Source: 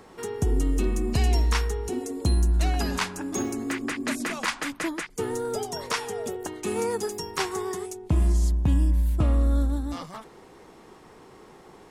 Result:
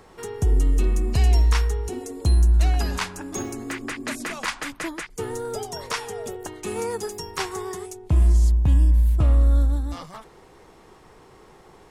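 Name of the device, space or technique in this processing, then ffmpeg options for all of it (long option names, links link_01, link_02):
low shelf boost with a cut just above: -af "lowshelf=frequency=93:gain=7.5,equalizer=frequency=240:width_type=o:width=1:gain=-5"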